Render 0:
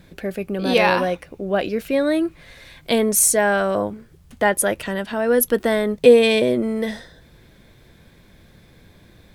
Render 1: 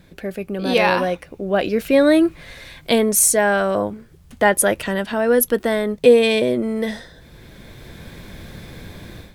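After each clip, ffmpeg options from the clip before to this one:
-af "dynaudnorm=f=510:g=3:m=5.01,volume=0.891"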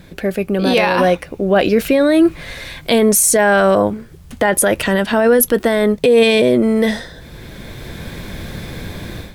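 -af "alimiter=limit=0.224:level=0:latency=1:release=20,volume=2.66"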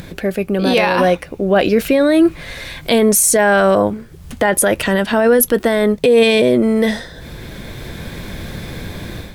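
-af "acompressor=mode=upward:threshold=0.0562:ratio=2.5"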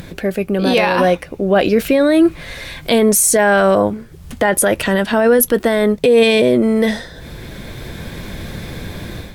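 -ar 48000 -c:a libvorbis -b:a 96k

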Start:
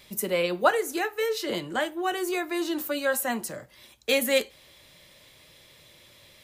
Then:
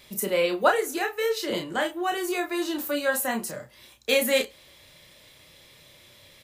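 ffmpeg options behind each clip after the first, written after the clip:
-filter_complex "[0:a]asplit=2[s0][s1];[s1]adelay=31,volume=0.562[s2];[s0][s2]amix=inputs=2:normalize=0"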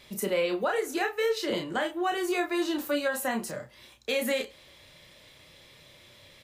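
-af "highshelf=f=8500:g=-9.5,alimiter=limit=0.119:level=0:latency=1:release=132"

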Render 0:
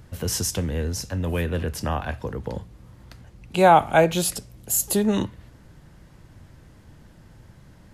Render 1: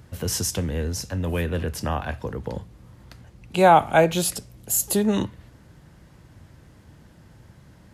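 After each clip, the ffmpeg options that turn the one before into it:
-af "highpass=48"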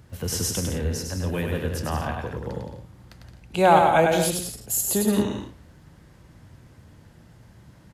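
-af "aecho=1:1:100|170|219|253.3|277.3:0.631|0.398|0.251|0.158|0.1,volume=0.75"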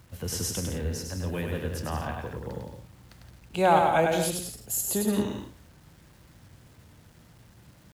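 -af "acrusher=bits=8:mix=0:aa=0.000001,volume=0.596"

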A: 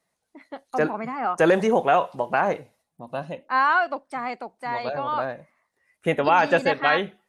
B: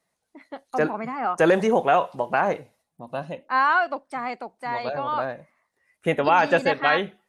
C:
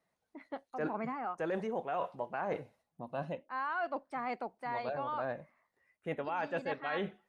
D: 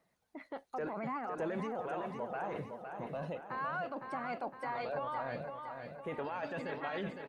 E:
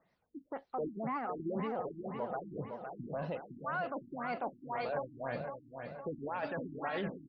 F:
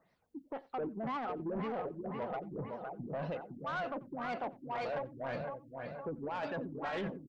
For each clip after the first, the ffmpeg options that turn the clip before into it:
-af anull
-af "highshelf=f=4400:g=-11.5,areverse,acompressor=threshold=0.0355:ratio=10,areverse,volume=0.668"
-filter_complex "[0:a]alimiter=level_in=3.55:limit=0.0631:level=0:latency=1:release=13,volume=0.282,aphaser=in_gain=1:out_gain=1:delay=2.6:decay=0.3:speed=0.73:type=triangular,asplit=2[s0][s1];[s1]aecho=0:1:510|1020|1530|2040|2550|3060:0.473|0.246|0.128|0.0665|0.0346|0.018[s2];[s0][s2]amix=inputs=2:normalize=0,volume=1.5"
-af "afftfilt=real='re*lt(b*sr/1024,330*pow(6200/330,0.5+0.5*sin(2*PI*1.9*pts/sr)))':imag='im*lt(b*sr/1024,330*pow(6200/330,0.5+0.5*sin(2*PI*1.9*pts/sr)))':win_size=1024:overlap=0.75,volume=1.26"
-af "asoftclip=type=tanh:threshold=0.0211,aecho=1:1:90:0.0841,volume=1.26"

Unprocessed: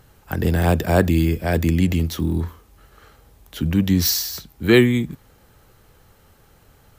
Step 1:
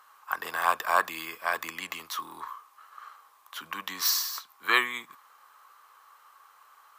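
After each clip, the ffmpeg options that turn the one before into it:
-af "highpass=f=1100:t=q:w=9.4,volume=0.531"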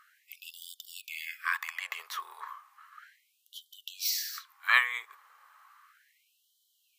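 -af "equalizer=f=1900:t=o:w=1:g=7.5,afftfilt=real='re*gte(b*sr/1024,370*pow(3000/370,0.5+0.5*sin(2*PI*0.34*pts/sr)))':imag='im*gte(b*sr/1024,370*pow(3000/370,0.5+0.5*sin(2*PI*0.34*pts/sr)))':win_size=1024:overlap=0.75,volume=0.531"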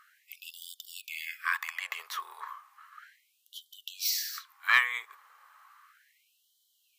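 -af "acontrast=48,volume=0.562"

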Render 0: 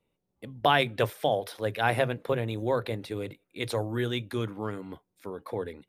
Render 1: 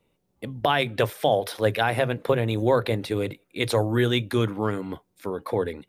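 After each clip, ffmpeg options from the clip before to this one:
-af "alimiter=limit=0.141:level=0:latency=1:release=272,volume=2.51"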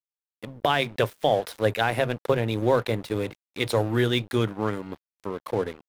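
-af "aeval=exprs='sgn(val(0))*max(abs(val(0))-0.0126,0)':c=same"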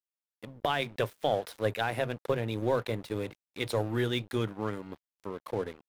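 -af "aeval=exprs='0.355*(cos(1*acos(clip(val(0)/0.355,-1,1)))-cos(1*PI/2))+0.0316*(cos(2*acos(clip(val(0)/0.355,-1,1)))-cos(2*PI/2))':c=same,volume=0.473"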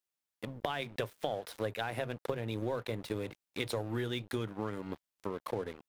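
-af "acompressor=threshold=0.0158:ratio=6,volume=1.58"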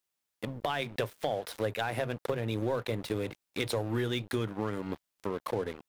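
-af "asoftclip=type=tanh:threshold=0.0596,volume=1.78"

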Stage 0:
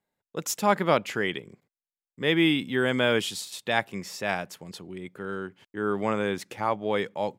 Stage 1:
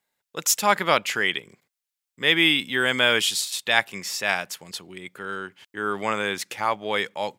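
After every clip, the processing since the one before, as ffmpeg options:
-af "tiltshelf=f=860:g=-7.5,volume=1.33"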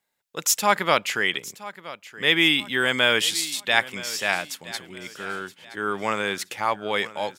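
-af "aecho=1:1:972|1944|2916:0.141|0.0523|0.0193"

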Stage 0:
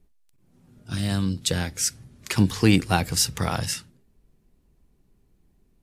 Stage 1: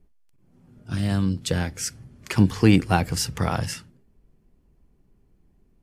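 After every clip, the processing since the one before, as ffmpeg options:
-af "highshelf=f=3000:g=-8.5,bandreject=f=3800:w=14,volume=1.26"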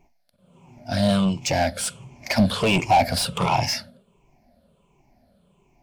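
-filter_complex "[0:a]afftfilt=real='re*pow(10,15/40*sin(2*PI*(0.71*log(max(b,1)*sr/1024/100)/log(2)-(-1.4)*(pts-256)/sr)))':imag='im*pow(10,15/40*sin(2*PI*(0.71*log(max(b,1)*sr/1024/100)/log(2)-(-1.4)*(pts-256)/sr)))':win_size=1024:overlap=0.75,asplit=2[s0][s1];[s1]highpass=f=720:p=1,volume=17.8,asoftclip=type=tanh:threshold=0.708[s2];[s0][s2]amix=inputs=2:normalize=0,lowpass=f=2900:p=1,volume=0.501,superequalizer=6b=0.398:7b=0.501:8b=1.78:10b=0.447:11b=0.355,volume=0.531"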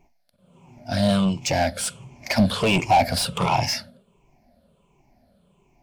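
-af anull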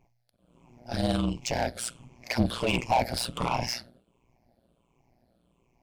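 -af "tremolo=f=120:d=0.974,volume=0.708"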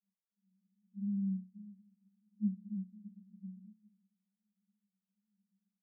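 -af "asuperpass=centerf=200:order=12:qfactor=5.9,volume=0.596"

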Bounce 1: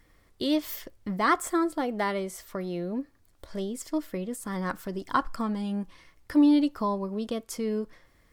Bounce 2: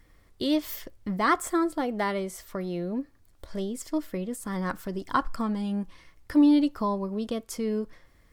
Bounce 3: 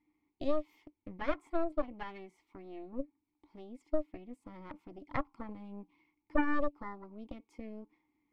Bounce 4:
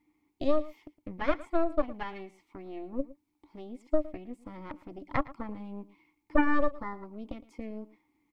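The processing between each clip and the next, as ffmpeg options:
-af "lowshelf=f=130:g=4.5"
-filter_complex "[0:a]asplit=3[s0][s1][s2];[s0]bandpass=f=300:t=q:w=8,volume=1[s3];[s1]bandpass=f=870:t=q:w=8,volume=0.501[s4];[s2]bandpass=f=2240:t=q:w=8,volume=0.355[s5];[s3][s4][s5]amix=inputs=3:normalize=0,aeval=exprs='0.224*(cos(1*acos(clip(val(0)/0.224,-1,1)))-cos(1*PI/2))+0.112*(cos(3*acos(clip(val(0)/0.224,-1,1)))-cos(3*PI/2))+0.0282*(cos(4*acos(clip(val(0)/0.224,-1,1)))-cos(4*PI/2))+0.0447*(cos(5*acos(clip(val(0)/0.224,-1,1)))-cos(5*PI/2))+0.0398*(cos(8*acos(clip(val(0)/0.224,-1,1)))-cos(8*PI/2))':c=same,acompressor=threshold=0.0398:ratio=10,volume=1.5"
-af "aecho=1:1:112:0.119,volume=1.88"

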